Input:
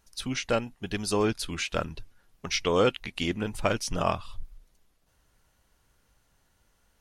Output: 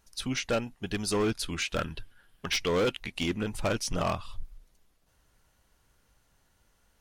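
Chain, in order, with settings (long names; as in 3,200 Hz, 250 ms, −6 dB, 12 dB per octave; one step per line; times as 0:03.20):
0:01.78–0:02.54: thirty-one-band graphic EQ 1,600 Hz +10 dB, 3,150 Hz +10 dB, 6,300 Hz −6 dB, 10,000 Hz +4 dB
hard clipping −22.5 dBFS, distortion −10 dB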